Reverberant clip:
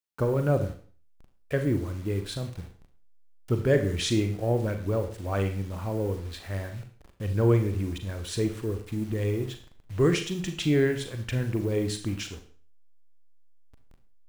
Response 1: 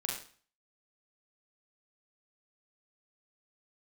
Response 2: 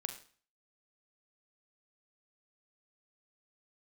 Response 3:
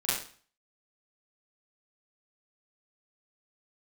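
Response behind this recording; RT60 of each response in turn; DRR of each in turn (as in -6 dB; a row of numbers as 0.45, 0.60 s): 2; 0.45, 0.45, 0.45 s; -2.0, 6.0, -11.0 dB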